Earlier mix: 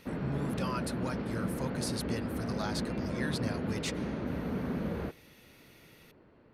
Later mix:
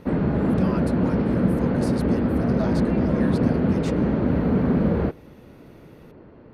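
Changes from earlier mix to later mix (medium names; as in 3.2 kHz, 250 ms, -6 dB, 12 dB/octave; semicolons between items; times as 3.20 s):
background +9.5 dB; master: add tilt shelf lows +5 dB, about 1.3 kHz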